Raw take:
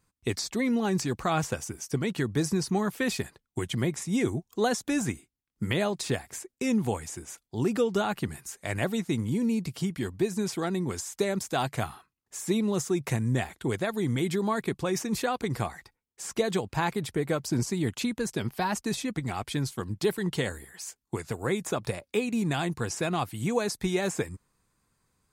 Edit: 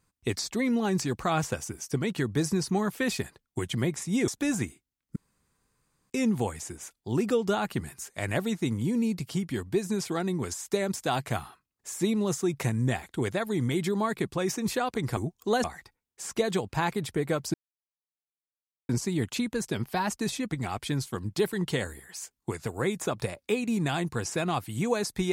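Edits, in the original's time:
0:04.28–0:04.75: move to 0:15.64
0:05.63–0:06.57: fill with room tone
0:17.54: splice in silence 1.35 s

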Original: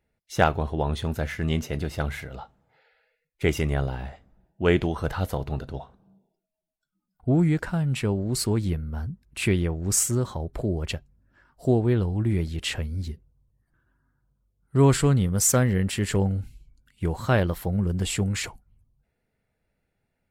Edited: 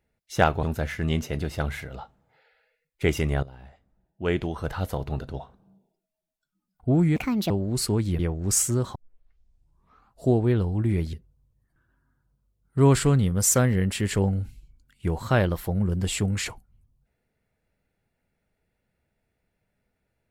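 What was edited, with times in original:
0:00.63–0:01.03: remove
0:03.83–0:05.58: fade in, from −17 dB
0:07.56–0:08.08: play speed 152%
0:08.77–0:09.60: remove
0:10.36: tape start 1.31 s
0:12.54–0:13.11: remove

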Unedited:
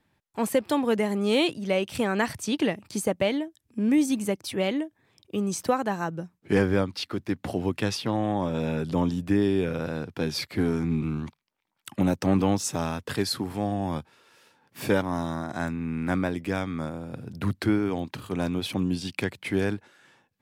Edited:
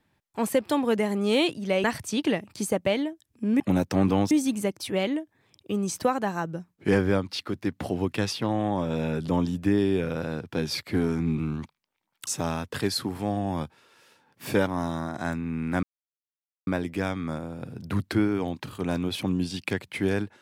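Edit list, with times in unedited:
0:01.84–0:02.19: remove
0:11.91–0:12.62: move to 0:03.95
0:16.18: splice in silence 0.84 s

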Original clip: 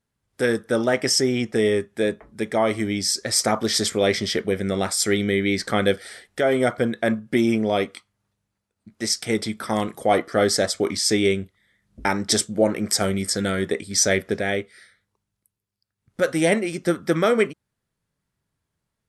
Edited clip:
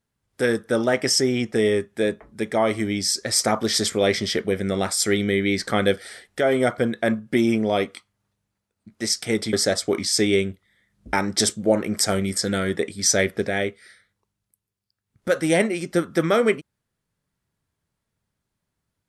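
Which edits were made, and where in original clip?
0:09.53–0:10.45: remove

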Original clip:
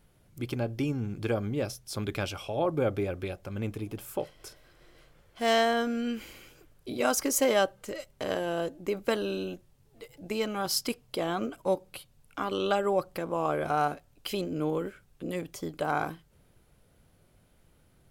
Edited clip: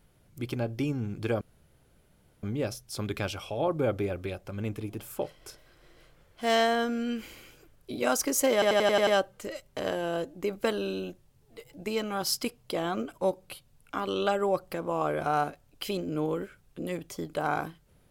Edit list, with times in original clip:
0:01.41: splice in room tone 1.02 s
0:07.51: stutter 0.09 s, 7 plays

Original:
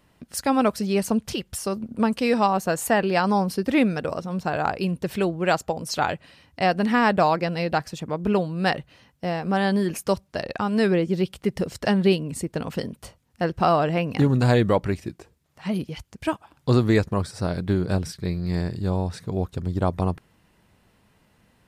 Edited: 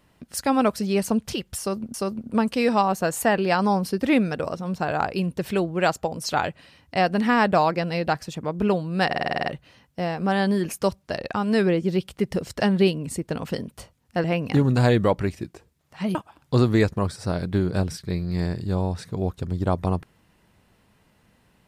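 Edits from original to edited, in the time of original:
0:01.59–0:01.94: repeat, 2 plays
0:08.71: stutter 0.05 s, 9 plays
0:13.49–0:13.89: remove
0:15.80–0:16.30: remove

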